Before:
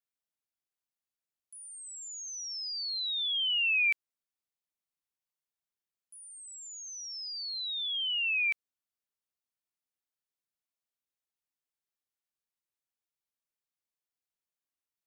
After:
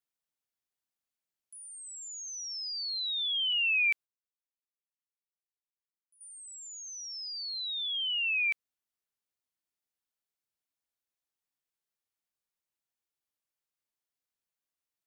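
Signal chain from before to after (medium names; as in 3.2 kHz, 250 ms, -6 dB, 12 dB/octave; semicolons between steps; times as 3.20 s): 3.52–6.21 s: gate -44 dBFS, range -16 dB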